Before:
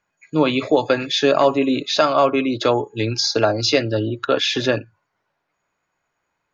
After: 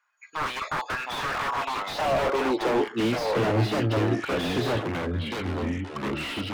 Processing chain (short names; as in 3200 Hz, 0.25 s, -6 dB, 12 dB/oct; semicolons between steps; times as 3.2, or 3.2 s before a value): 3.25–3.72 LPF 3300 Hz 24 dB/oct; wavefolder -17 dBFS; high-pass sweep 1200 Hz -> 64 Hz, 1.64–4; echoes that change speed 0.622 s, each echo -4 st, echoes 3, each echo -6 dB; slew limiter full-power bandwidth 92 Hz; gain -2.5 dB